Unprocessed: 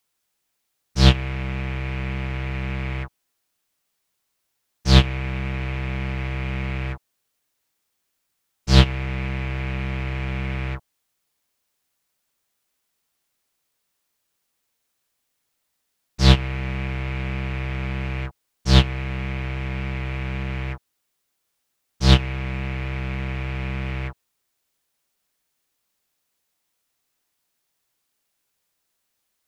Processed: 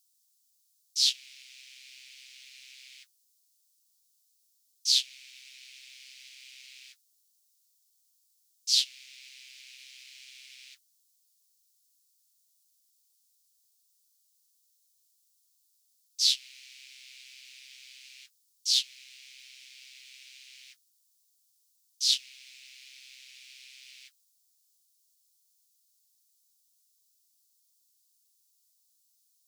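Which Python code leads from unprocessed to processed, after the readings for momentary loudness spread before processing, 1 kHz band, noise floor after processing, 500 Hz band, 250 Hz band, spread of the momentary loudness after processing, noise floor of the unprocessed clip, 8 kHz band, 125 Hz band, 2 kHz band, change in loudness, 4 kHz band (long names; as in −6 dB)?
14 LU, below −40 dB, −71 dBFS, below −40 dB, below −40 dB, 15 LU, −76 dBFS, +5.5 dB, below −40 dB, −19.0 dB, −3.0 dB, −1.5 dB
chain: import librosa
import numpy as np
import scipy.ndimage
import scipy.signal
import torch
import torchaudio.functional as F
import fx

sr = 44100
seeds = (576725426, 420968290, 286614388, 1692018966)

y = scipy.signal.sosfilt(scipy.signal.cheby2(4, 80, 770.0, 'highpass', fs=sr, output='sos'), x)
y = y * librosa.db_to_amplitude(5.5)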